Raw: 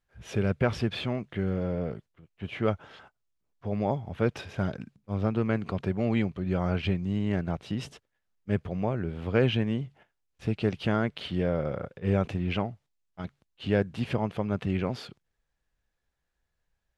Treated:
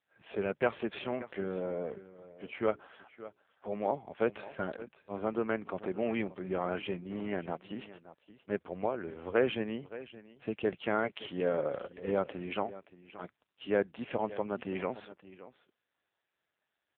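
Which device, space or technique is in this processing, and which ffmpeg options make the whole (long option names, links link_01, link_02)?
satellite phone: -filter_complex "[0:a]asplit=3[link_01][link_02][link_03];[link_01]afade=type=out:start_time=2.65:duration=0.02[link_04];[link_02]bandreject=frequency=60:width_type=h:width=6,bandreject=frequency=120:width_type=h:width=6,bandreject=frequency=180:width_type=h:width=6,bandreject=frequency=240:width_type=h:width=6,bandreject=frequency=300:width_type=h:width=6,bandreject=frequency=360:width_type=h:width=6,bandreject=frequency=420:width_type=h:width=6,afade=type=in:start_time=2.65:duration=0.02,afade=type=out:start_time=3.94:duration=0.02[link_05];[link_03]afade=type=in:start_time=3.94:duration=0.02[link_06];[link_04][link_05][link_06]amix=inputs=3:normalize=0,asplit=3[link_07][link_08][link_09];[link_07]afade=type=out:start_time=8.59:duration=0.02[link_10];[link_08]lowshelf=frequency=100:width_type=q:width=3:gain=6.5,afade=type=in:start_time=8.59:duration=0.02,afade=type=out:start_time=9.4:duration=0.02[link_11];[link_09]afade=type=in:start_time=9.4:duration=0.02[link_12];[link_10][link_11][link_12]amix=inputs=3:normalize=0,asplit=3[link_13][link_14][link_15];[link_13]afade=type=out:start_time=11.02:duration=0.02[link_16];[link_14]aecho=1:1:7.1:0.41,afade=type=in:start_time=11.02:duration=0.02,afade=type=out:start_time=11.74:duration=0.02[link_17];[link_15]afade=type=in:start_time=11.74:duration=0.02[link_18];[link_16][link_17][link_18]amix=inputs=3:normalize=0,highpass=340,lowpass=3200,aecho=1:1:573:0.158" -ar 8000 -c:a libopencore_amrnb -b:a 5900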